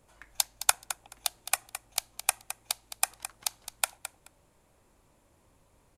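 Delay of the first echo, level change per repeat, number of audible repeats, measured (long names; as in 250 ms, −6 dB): 214 ms, −16.0 dB, 2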